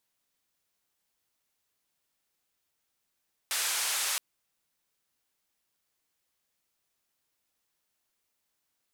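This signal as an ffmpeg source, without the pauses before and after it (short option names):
-f lavfi -i "anoisesrc=c=white:d=0.67:r=44100:seed=1,highpass=f=890,lowpass=f=11000,volume=-22.3dB"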